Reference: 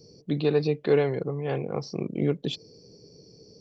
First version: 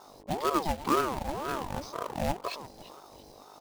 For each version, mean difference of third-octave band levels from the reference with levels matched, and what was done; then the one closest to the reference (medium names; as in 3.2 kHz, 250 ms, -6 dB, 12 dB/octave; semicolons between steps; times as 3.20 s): 13.5 dB: on a send: feedback delay 341 ms, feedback 35%, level -15 dB; on the sum: companded quantiser 4-bit; mains buzz 50 Hz, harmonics 14, -49 dBFS -4 dB/octave; ring modulator with a swept carrier 610 Hz, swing 40%, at 2 Hz; trim -2.5 dB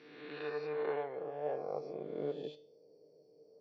7.5 dB: reverse spectral sustain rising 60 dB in 1.32 s; bass shelf 380 Hz -5 dB; feedback comb 150 Hz, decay 0.38 s, harmonics all, mix 70%; band-pass sweep 1.4 kHz -> 600 Hz, 0.39–1.45 s; trim +4 dB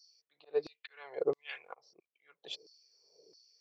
10.5 dB: slow attack 512 ms; peaking EQ 250 Hz -9 dB 0.84 oct; LFO high-pass saw down 1.5 Hz 310–4700 Hz; upward expansion 1.5:1, over -49 dBFS; trim +1 dB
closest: second